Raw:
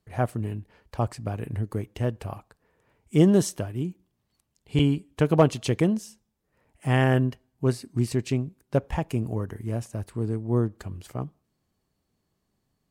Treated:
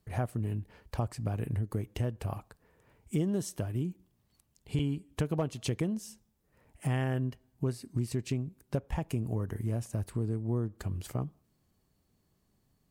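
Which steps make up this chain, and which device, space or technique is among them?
ASMR close-microphone chain (low shelf 210 Hz +5 dB; compressor 4:1, threshold -30 dBFS, peak gain reduction 16 dB; high shelf 9500 Hz +6.5 dB)

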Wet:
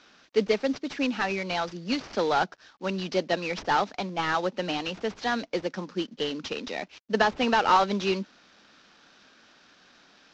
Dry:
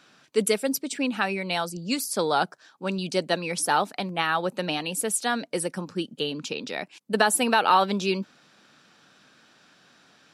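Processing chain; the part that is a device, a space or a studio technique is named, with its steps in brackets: early wireless headset (HPF 180 Hz 24 dB/oct; CVSD 32 kbps)

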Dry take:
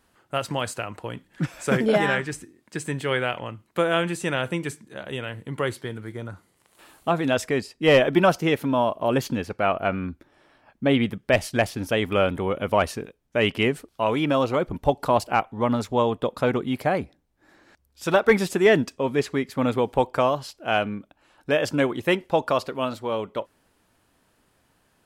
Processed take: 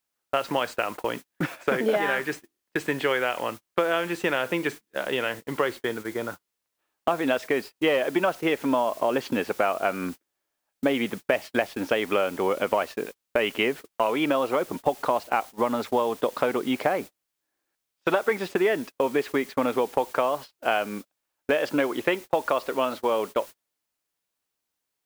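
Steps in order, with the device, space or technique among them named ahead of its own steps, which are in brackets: baby monitor (BPF 320–3300 Hz; compressor 8:1, threshold -28 dBFS, peak gain reduction 15.5 dB; white noise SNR 21 dB; gate -42 dBFS, range -35 dB); gain +8 dB

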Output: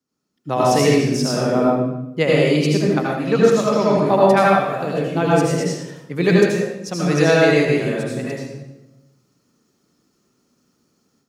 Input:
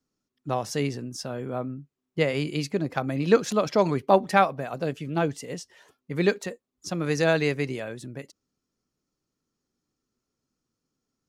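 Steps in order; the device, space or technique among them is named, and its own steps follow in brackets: far laptop microphone (reverb RT60 0.95 s, pre-delay 71 ms, DRR -5 dB; HPF 100 Hz; AGC gain up to 12.5 dB); gain -1 dB

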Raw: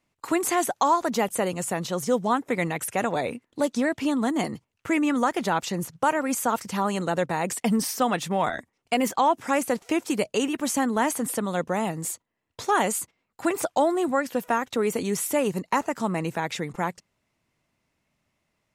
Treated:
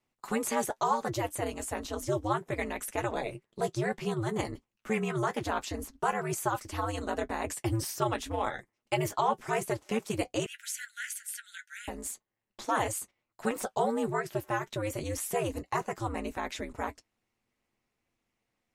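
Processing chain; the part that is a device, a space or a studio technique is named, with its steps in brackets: alien voice (ring modulator 110 Hz; flange 0.13 Hz, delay 8.1 ms, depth 1 ms, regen -44%); 10.46–11.88 Chebyshev high-pass 1400 Hz, order 10

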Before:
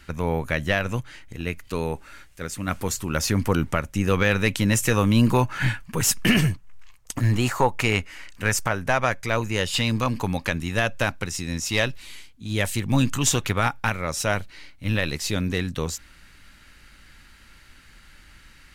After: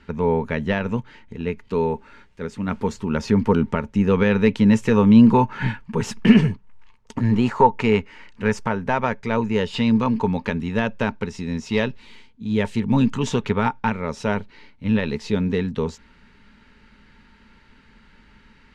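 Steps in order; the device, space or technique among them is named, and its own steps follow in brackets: inside a cardboard box (LPF 3900 Hz 12 dB/oct; small resonant body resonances 220/420/900 Hz, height 14 dB, ringing for 50 ms); gain -3.5 dB

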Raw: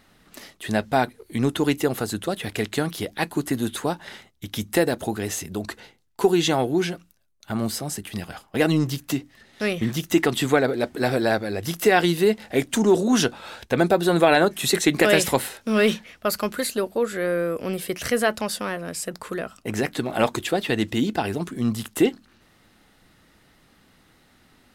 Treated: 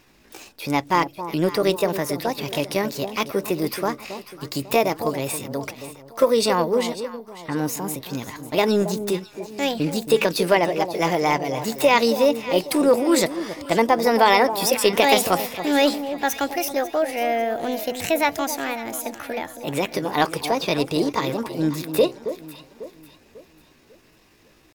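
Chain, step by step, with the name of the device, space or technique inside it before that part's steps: chipmunk voice (pitch shift +5 st); 6.93–7.56 elliptic low-pass 3600 Hz; echo with dull and thin repeats by turns 0.273 s, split 1000 Hz, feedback 61%, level -10 dB; gain +1 dB

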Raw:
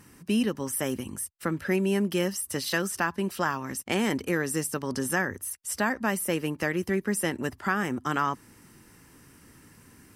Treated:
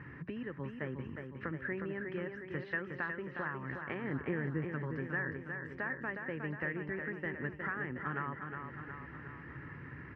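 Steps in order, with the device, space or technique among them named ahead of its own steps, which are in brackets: bass amplifier (compressor 3:1, threshold -47 dBFS, peak gain reduction 19 dB; speaker cabinet 66–2200 Hz, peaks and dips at 67 Hz +7 dB, 140 Hz +9 dB, 210 Hz -7 dB, 740 Hz -5 dB, 1800 Hz +9 dB); 4.04–4.72 tilt shelf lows +5.5 dB, about 860 Hz; feedback echo 0.362 s, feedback 58%, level -6 dB; gain +4 dB

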